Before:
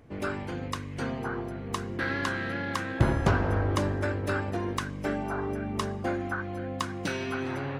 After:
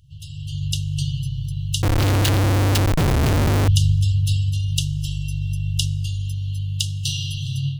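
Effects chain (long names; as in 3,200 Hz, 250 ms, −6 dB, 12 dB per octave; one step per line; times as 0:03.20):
brick-wall band-stop 160–2,700 Hz
automatic gain control gain up to 11 dB
0:01.82–0:03.68: comparator with hysteresis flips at −32 dBFS
level +4.5 dB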